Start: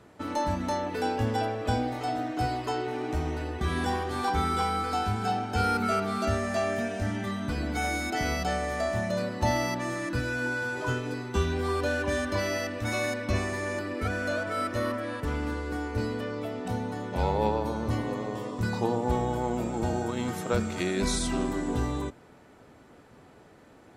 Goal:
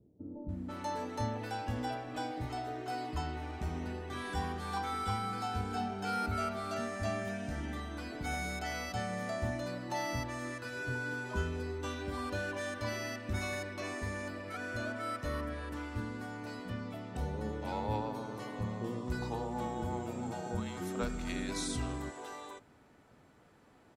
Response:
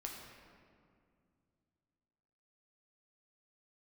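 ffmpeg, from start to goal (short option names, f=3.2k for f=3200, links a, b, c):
-filter_complex "[0:a]acrossover=split=440[a][b];[b]adelay=490[c];[a][c]amix=inputs=2:normalize=0,volume=-7.5dB"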